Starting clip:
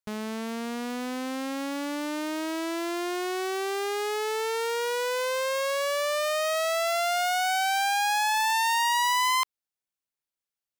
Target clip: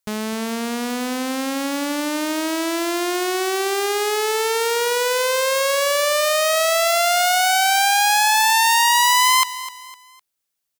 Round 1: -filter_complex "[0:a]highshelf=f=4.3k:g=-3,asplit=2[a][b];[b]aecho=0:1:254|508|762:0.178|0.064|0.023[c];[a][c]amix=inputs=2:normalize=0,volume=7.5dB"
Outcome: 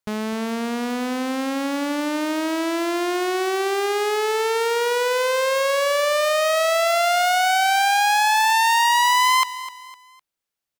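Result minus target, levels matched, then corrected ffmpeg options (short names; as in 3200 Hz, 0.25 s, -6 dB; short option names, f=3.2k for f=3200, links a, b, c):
8000 Hz band -5.5 dB
-filter_complex "[0:a]highshelf=f=4.3k:g=6.5,asplit=2[a][b];[b]aecho=0:1:254|508|762:0.178|0.064|0.023[c];[a][c]amix=inputs=2:normalize=0,volume=7.5dB"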